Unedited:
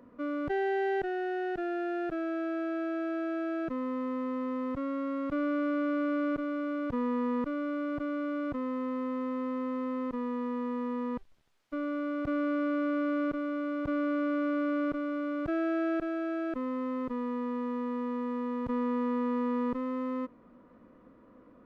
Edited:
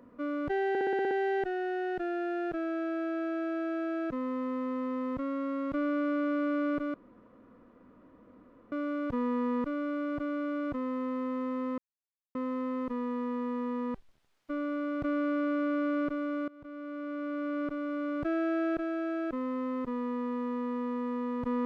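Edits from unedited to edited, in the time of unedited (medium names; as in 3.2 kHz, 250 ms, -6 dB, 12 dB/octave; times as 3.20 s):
0.69 s: stutter 0.06 s, 8 plays
6.52 s: insert room tone 1.78 s
9.58 s: insert silence 0.57 s
13.71–15.32 s: fade in linear, from -22.5 dB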